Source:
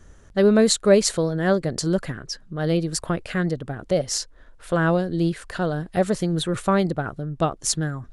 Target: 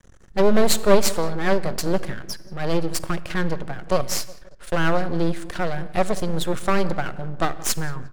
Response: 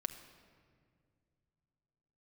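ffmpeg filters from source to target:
-filter_complex "[0:a]asplit=2[a][b];[b]adelay=177,lowpass=f=2.1k:p=1,volume=-19.5dB,asplit=2[c][d];[d]adelay=177,lowpass=f=2.1k:p=1,volume=0.51,asplit=2[e][f];[f]adelay=177,lowpass=f=2.1k:p=1,volume=0.51,asplit=2[g][h];[h]adelay=177,lowpass=f=2.1k:p=1,volume=0.51[i];[a][c][e][g][i]amix=inputs=5:normalize=0,aeval=exprs='max(val(0),0)':c=same,asplit=2[j][k];[1:a]atrim=start_sample=2205,afade=t=out:st=0.28:d=0.01,atrim=end_sample=12789[l];[k][l]afir=irnorm=-1:irlink=0,volume=1dB[m];[j][m]amix=inputs=2:normalize=0,volume=-2dB"

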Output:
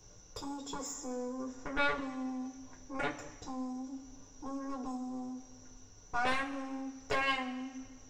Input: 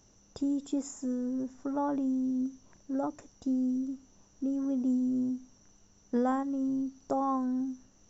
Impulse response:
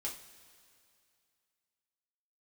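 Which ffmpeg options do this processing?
-filter_complex "[0:a]acrossover=split=360|3600[a][b][c];[a]acompressor=threshold=-43dB:ratio=6[d];[d][b][c]amix=inputs=3:normalize=0,aeval=exprs='0.112*(cos(1*acos(clip(val(0)/0.112,-1,1)))-cos(1*PI/2))+0.0447*(cos(7*acos(clip(val(0)/0.112,-1,1)))-cos(7*PI/2))':c=same[e];[1:a]atrim=start_sample=2205,asetrate=74970,aresample=44100[f];[e][f]afir=irnorm=-1:irlink=0,volume=5dB"

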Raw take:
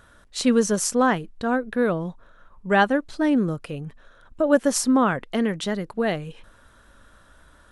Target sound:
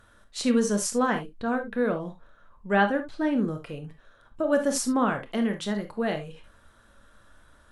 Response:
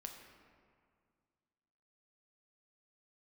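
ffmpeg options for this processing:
-filter_complex "[0:a]asettb=1/sr,asplit=3[a][b][c];[a]atrim=end=1.344[d];[b]atrim=start=1.34:end=3.66,asetpts=PTS-STARTPTS,afade=t=in:d=0.004:c=qsin,afade=t=out:st=2.316:d=0.004:c=qsin,acrossover=split=4100[e][f];[f]acompressor=threshold=-55dB:ratio=4:attack=1:release=60[g];[e][g]amix=inputs=2:normalize=0[h];[c]atrim=start=3.656[i];[d][h]acrossfade=d=0.004:c1=hsin:c2=qsin[j];[j][i]acrossfade=d=0.004:c1=qsin:c2=hsin[k];[1:a]atrim=start_sample=2205,atrim=end_sample=3087,asetrate=36603,aresample=44100[l];[k][l]afir=irnorm=-1:irlink=0"

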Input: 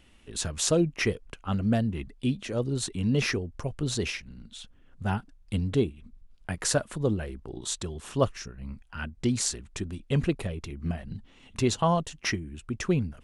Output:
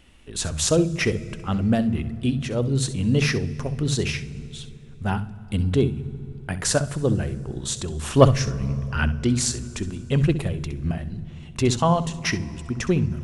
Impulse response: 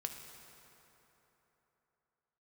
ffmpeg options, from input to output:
-filter_complex "[0:a]asettb=1/sr,asplit=3[a][b][c];[a]atrim=end=7.994[d];[b]atrim=start=7.99:end=9.09,asetpts=PTS-STARTPTS,afade=t=in:d=0.004:c=qsin,afade=t=out:st=1.096:d=0.004:c=qsin,acontrast=75[e];[c]atrim=start=9.086[f];[d][e]acrossfade=d=0.004:c1=hsin:c2=qsin[g];[g][f]acrossfade=d=0.004:c1=qsin:c2=hsin,asplit=2[h][i];[i]bass=f=250:g=14,treble=f=4k:g=2[j];[1:a]atrim=start_sample=2205,adelay=65[k];[j][k]afir=irnorm=-1:irlink=0,volume=-13dB[l];[h][l]amix=inputs=2:normalize=0,volume=4dB"

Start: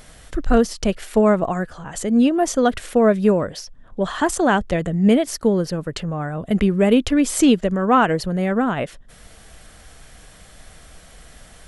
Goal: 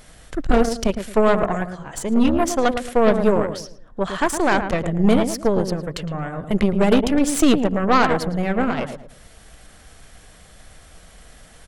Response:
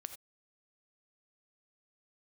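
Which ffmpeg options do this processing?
-filter_complex "[0:a]asplit=2[a][b];[b]adelay=111,lowpass=f=1.3k:p=1,volume=-7dB,asplit=2[c][d];[d]adelay=111,lowpass=f=1.3k:p=1,volume=0.33,asplit=2[e][f];[f]adelay=111,lowpass=f=1.3k:p=1,volume=0.33,asplit=2[g][h];[h]adelay=111,lowpass=f=1.3k:p=1,volume=0.33[i];[a][c][e][g][i]amix=inputs=5:normalize=0,aeval=exprs='0.75*(cos(1*acos(clip(val(0)/0.75,-1,1)))-cos(1*PI/2))+0.119*(cos(6*acos(clip(val(0)/0.75,-1,1)))-cos(6*PI/2))':c=same,volume=-2dB"

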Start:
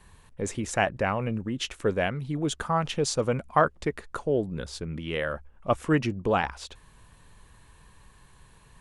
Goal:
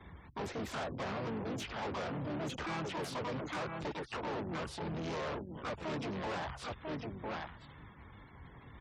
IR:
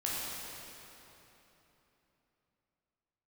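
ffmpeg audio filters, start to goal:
-filter_complex "[0:a]acrossover=split=4400[a][b];[a]aecho=1:1:990:0.211[c];[b]acompressor=threshold=-53dB:ratio=16[d];[c][d]amix=inputs=2:normalize=0,asplit=4[e][f][g][h];[f]asetrate=35002,aresample=44100,atempo=1.25992,volume=-6dB[i];[g]asetrate=55563,aresample=44100,atempo=0.793701,volume=-5dB[j];[h]asetrate=88200,aresample=44100,atempo=0.5,volume=-2dB[k];[e][i][j][k]amix=inputs=4:normalize=0,acrossover=split=160|1300[l][m][n];[l]acompressor=threshold=-38dB:ratio=4[o];[m]acompressor=threshold=-25dB:ratio=4[p];[n]acompressor=threshold=-36dB:ratio=4[q];[o][p][q]amix=inputs=3:normalize=0,asplit=2[r][s];[s]aeval=exprs='(mod(35.5*val(0)+1,2)-1)/35.5':c=same,volume=-6dB[t];[r][t]amix=inputs=2:normalize=0,highshelf=f=4.6k:g=-9.5,asoftclip=type=tanh:threshold=-32.5dB,afftfilt=real='re*gte(hypot(re,im),0.002)':imag='im*gte(hypot(re,im),0.002)':win_size=1024:overlap=0.75,highpass=54,volume=-3dB"

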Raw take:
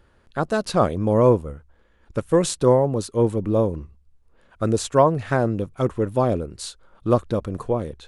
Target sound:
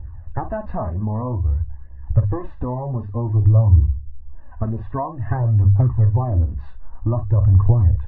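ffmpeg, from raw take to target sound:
-filter_complex "[0:a]bandreject=f=50:t=h:w=6,bandreject=f=100:t=h:w=6,bandreject=f=150:t=h:w=6,bandreject=f=200:t=h:w=6,aecho=1:1:1.1:0.76,asplit=2[a][b];[b]aecho=0:1:32|48:0.126|0.237[c];[a][c]amix=inputs=2:normalize=0,acompressor=threshold=-27dB:ratio=6,lowpass=f=1.7k:w=0.5412,lowpass=f=1.7k:w=1.3066,lowshelf=f=130:t=q:w=3:g=9.5,flanger=delay=0.2:depth=5.2:regen=0:speed=0.52:shape=triangular,tiltshelf=f=1.1k:g=4.5,volume=5.5dB" -ar 16000 -c:a libvorbis -b:a 32k

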